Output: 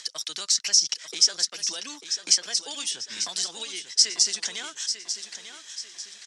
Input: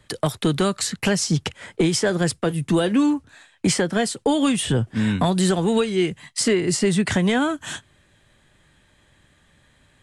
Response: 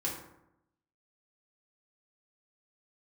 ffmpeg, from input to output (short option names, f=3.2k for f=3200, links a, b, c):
-filter_complex "[0:a]highpass=f=260:p=1,aderivative,acompressor=mode=upward:threshold=-34dB:ratio=2.5,atempo=1.6,lowpass=f=5.6k:t=q:w=5.7,asplit=2[a][b];[b]aecho=0:1:894|1788|2682|3576:0.335|0.134|0.0536|0.0214[c];[a][c]amix=inputs=2:normalize=0"